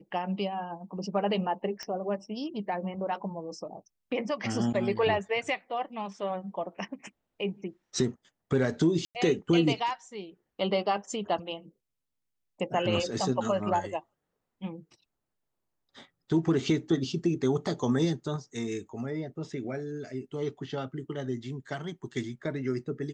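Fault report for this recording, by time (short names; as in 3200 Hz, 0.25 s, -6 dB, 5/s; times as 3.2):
1.83 pop -23 dBFS
9.05–9.15 gap 98 ms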